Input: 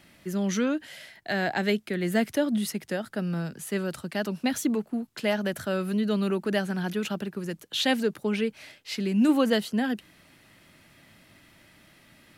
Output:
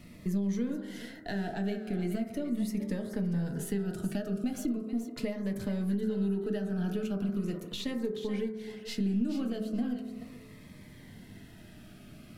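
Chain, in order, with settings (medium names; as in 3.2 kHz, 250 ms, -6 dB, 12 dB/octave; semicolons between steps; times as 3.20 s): partial rectifier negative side -3 dB; on a send at -2 dB: high-pass 170 Hz 24 dB/octave + reverberation RT60 0.65 s, pre-delay 4 ms; on the sum: compression 6:1, threshold -37 dBFS, peak gain reduction 20.5 dB; bass shelf 350 Hz +12 dB; thinning echo 429 ms, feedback 18%, level -10 dB; Shepard-style phaser falling 0.39 Hz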